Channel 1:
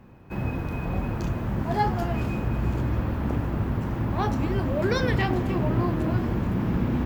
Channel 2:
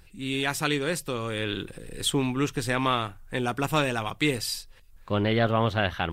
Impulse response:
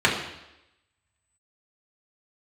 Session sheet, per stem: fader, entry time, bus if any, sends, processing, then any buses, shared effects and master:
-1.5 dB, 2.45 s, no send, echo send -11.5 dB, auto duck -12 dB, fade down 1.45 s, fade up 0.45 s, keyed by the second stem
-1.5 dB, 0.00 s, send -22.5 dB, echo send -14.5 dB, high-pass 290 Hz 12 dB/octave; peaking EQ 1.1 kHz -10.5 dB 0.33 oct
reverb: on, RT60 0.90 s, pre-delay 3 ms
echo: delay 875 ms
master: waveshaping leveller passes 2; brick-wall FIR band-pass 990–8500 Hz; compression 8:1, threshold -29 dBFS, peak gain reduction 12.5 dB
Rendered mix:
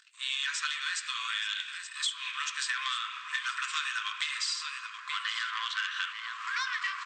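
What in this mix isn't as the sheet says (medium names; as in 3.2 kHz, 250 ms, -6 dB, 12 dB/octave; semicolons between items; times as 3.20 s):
stem 1: entry 2.45 s -> 1.65 s; stem 2: missing high-pass 290 Hz 12 dB/octave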